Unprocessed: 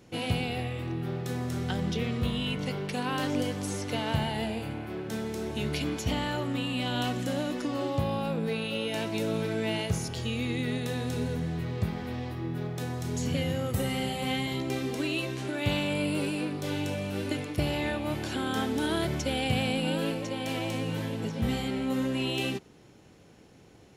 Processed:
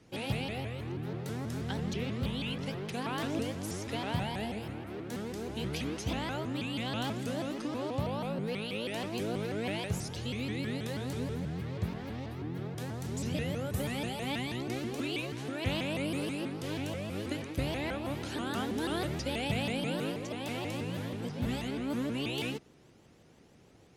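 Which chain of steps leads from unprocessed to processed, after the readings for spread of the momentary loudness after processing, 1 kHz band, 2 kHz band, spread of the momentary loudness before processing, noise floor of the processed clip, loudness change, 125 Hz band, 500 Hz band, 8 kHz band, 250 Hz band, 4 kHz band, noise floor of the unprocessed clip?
5 LU, −4.5 dB, −4.5 dB, 5 LU, −59 dBFS, −4.5 dB, −4.5 dB, −4.5 dB, −4.5 dB, −4.5 dB, −5.0 dB, −55 dBFS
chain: pitch modulation by a square or saw wave saw up 6.2 Hz, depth 250 cents
level −4.5 dB

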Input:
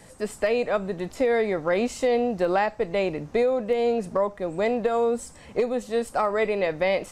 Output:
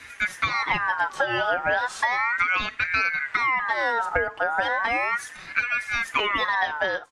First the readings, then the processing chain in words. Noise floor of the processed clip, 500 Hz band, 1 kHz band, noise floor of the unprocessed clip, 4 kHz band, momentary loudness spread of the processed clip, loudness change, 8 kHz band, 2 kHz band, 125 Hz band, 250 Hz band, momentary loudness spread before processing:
−43 dBFS, −9.5 dB, +5.0 dB, −48 dBFS, +7.5 dB, 3 LU, +1.0 dB, −1.0 dB, +12.0 dB, −5.0 dB, −12.5 dB, 4 LU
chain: fade-out on the ending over 0.56 s
parametric band 300 Hz +14 dB 0.25 octaves
comb filter 5.4 ms, depth 77%
downward compressor, threshold −24 dBFS, peak gain reduction 11 dB
high-frequency loss of the air 57 metres
ring modulator whose carrier an LFO sweeps 1,500 Hz, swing 30%, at 0.35 Hz
level +6.5 dB

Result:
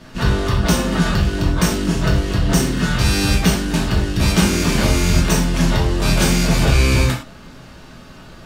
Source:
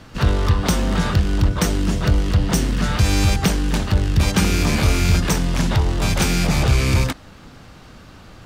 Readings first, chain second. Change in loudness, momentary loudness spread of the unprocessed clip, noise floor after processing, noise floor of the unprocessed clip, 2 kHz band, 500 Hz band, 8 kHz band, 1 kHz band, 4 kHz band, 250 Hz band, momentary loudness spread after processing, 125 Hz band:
+1.5 dB, 3 LU, −40 dBFS, −43 dBFS, +3.0 dB, +3.5 dB, +3.0 dB, +2.0 dB, +3.0 dB, +3.5 dB, 4 LU, +0.5 dB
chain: reverb whose tail is shaped and stops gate 140 ms falling, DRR −3.5 dB
level −2 dB

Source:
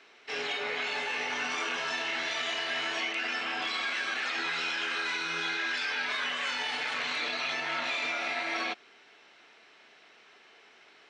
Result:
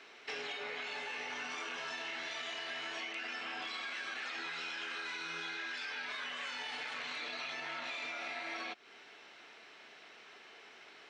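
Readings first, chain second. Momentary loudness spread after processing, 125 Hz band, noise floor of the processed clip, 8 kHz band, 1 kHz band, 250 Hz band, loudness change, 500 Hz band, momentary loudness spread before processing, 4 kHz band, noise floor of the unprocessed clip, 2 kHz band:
15 LU, −9.0 dB, −57 dBFS, −9.0 dB, −9.0 dB, −9.0 dB, −9.0 dB, −8.5 dB, 1 LU, −9.0 dB, −58 dBFS, −9.0 dB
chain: downward compressor 6 to 1, threshold −41 dBFS, peak gain reduction 12 dB
level +1.5 dB

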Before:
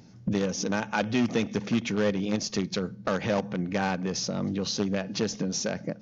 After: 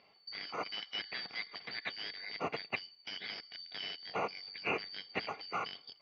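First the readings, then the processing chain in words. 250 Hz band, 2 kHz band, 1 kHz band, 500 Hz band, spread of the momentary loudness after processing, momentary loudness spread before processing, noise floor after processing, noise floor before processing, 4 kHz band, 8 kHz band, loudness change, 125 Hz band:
−24.5 dB, −5.5 dB, −6.5 dB, −15.0 dB, 6 LU, 4 LU, −66 dBFS, −48 dBFS, −4.5 dB, can't be measured, −11.0 dB, −24.5 dB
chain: band-splitting scrambler in four parts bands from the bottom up 4321
harmonic generator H 2 −31 dB, 5 −19 dB, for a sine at −11.5 dBFS
loudspeaker in its box 140–3,000 Hz, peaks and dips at 190 Hz +5 dB, 290 Hz +4 dB, 430 Hz +6 dB, 710 Hz +7 dB, 2,200 Hz +10 dB
level −7.5 dB

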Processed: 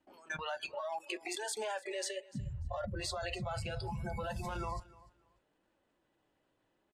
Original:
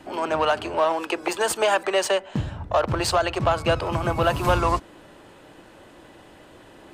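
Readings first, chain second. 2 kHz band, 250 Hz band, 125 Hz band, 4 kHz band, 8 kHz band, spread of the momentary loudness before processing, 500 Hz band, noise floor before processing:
−15.0 dB, −16.5 dB, −13.5 dB, −14.0 dB, −11.5 dB, 6 LU, −18.5 dB, −49 dBFS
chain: noise reduction from a noise print of the clip's start 29 dB
low-pass filter 9,900 Hz 12 dB per octave
in parallel at −1.5 dB: downward compressor, threshold −31 dBFS, peak gain reduction 15 dB
on the sum: brickwall limiter −16.5 dBFS, peak gain reduction 9.5 dB
output level in coarse steps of 20 dB
flanger 0.7 Hz, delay 3.2 ms, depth 4.6 ms, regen −55%
on a send: repeating echo 295 ms, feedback 21%, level −21 dB
on the sum: level +6 dB

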